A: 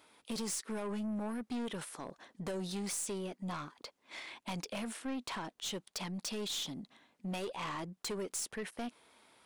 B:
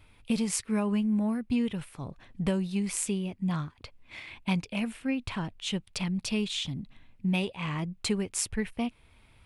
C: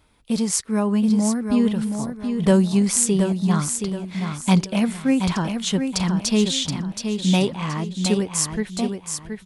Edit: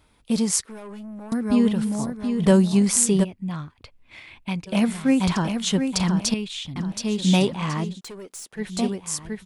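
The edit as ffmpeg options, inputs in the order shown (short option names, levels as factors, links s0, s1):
-filter_complex "[0:a]asplit=2[s0][s1];[1:a]asplit=2[s2][s3];[2:a]asplit=5[s4][s5][s6][s7][s8];[s4]atrim=end=0.662[s9];[s0]atrim=start=0.658:end=1.322[s10];[s5]atrim=start=1.318:end=3.25[s11];[s2]atrim=start=3.23:end=4.68[s12];[s6]atrim=start=4.66:end=6.342[s13];[s3]atrim=start=6.338:end=6.762[s14];[s7]atrim=start=6.758:end=8.01[s15];[s1]atrim=start=7.91:end=8.65[s16];[s8]atrim=start=8.55[s17];[s9][s10]acrossfade=d=0.004:c1=hsin:c2=hsin[s18];[s18][s11]acrossfade=d=0.004:c1=hsin:c2=hsin[s19];[s19][s12]acrossfade=d=0.02:c1=tri:c2=tri[s20];[s20][s13]acrossfade=d=0.02:c1=tri:c2=tri[s21];[s21][s14]acrossfade=d=0.004:c1=hsin:c2=hsin[s22];[s22][s15]acrossfade=d=0.004:c1=hsin:c2=hsin[s23];[s23][s16]acrossfade=d=0.1:c1=tri:c2=tri[s24];[s24][s17]acrossfade=d=0.1:c1=tri:c2=tri"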